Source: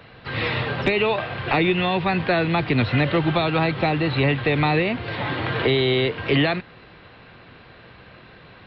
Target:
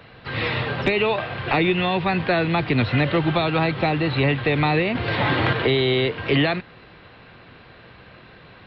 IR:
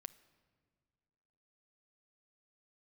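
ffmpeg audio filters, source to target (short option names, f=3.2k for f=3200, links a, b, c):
-filter_complex "[0:a]asettb=1/sr,asplit=3[a][b][c];[a]atrim=end=4.954[d];[b]atrim=start=4.95:end=5.53,asetpts=PTS-STARTPTS,afade=t=in:d=0.004:c=qsin,afade=t=out:st=0.576:d=0.004:c=qsin,acontrast=39[e];[c]atrim=start=5.526[f];[d][e]acrossfade=d=0.004:c1=hsin:c2=qsin[g];[g][f]acrossfade=d=0.004:c1=qsin:c2=hsin"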